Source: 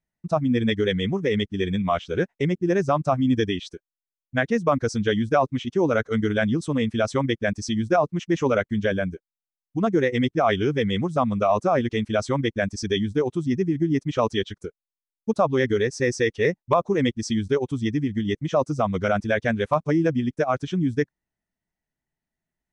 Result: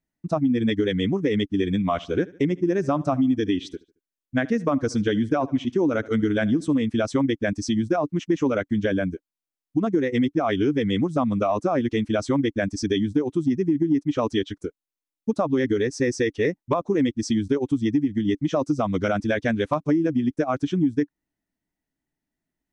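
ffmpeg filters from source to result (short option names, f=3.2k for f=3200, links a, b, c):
-filter_complex "[0:a]asettb=1/sr,asplit=3[a][b][c];[a]atrim=end=1.854[d];[b]atrim=start=1.85:end=6.81,asetpts=PTS-STARTPTS,afade=t=in:d=0.004:c=qsin,afade=t=out:st=4.956:d=0.004:c=qsin,aecho=1:1:74|148|222:0.0708|0.0283|0.0113,atrim=end_sample=218736[e];[c]atrim=start=6.806[f];[d][e]acrossfade=d=0.004:c1=hsin:c2=qsin[g];[g][f]acrossfade=d=0.004:c1=qsin:c2=hsin,asettb=1/sr,asplit=3[h][i][j];[h]atrim=end=18.364[k];[i]atrim=start=18.36:end=19.8,asetpts=PTS-STARTPTS,afade=t=in:d=0.004:c=qsin,afade=t=out:st=1.436:d=0.004:c=qsin,equalizer=f=4.5k:w=0.94:g=3.5[l];[j]atrim=start=19.796[m];[k][l]acrossfade=d=0.004:c1=hsin:c2=qsin[n];[n][m]acrossfade=d=0.004:c1=qsin:c2=hsin,equalizer=f=290:t=o:w=0.46:g=12,acompressor=threshold=-18dB:ratio=6"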